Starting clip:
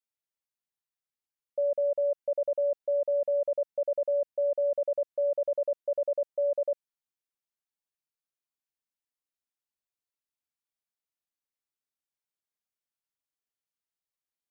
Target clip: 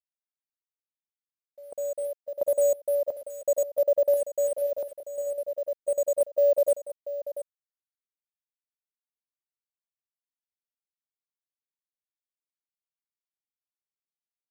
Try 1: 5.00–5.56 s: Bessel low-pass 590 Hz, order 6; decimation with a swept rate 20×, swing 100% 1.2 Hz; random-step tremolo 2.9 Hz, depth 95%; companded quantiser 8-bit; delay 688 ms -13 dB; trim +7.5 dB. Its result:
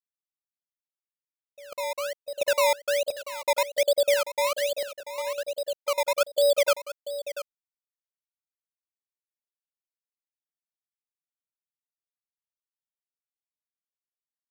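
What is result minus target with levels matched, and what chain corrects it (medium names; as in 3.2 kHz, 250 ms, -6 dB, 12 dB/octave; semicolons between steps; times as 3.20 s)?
decimation with a swept rate: distortion +17 dB
5.00–5.56 s: Bessel low-pass 590 Hz, order 6; decimation with a swept rate 4×, swing 100% 1.2 Hz; random-step tremolo 2.9 Hz, depth 95%; companded quantiser 8-bit; delay 688 ms -13 dB; trim +7.5 dB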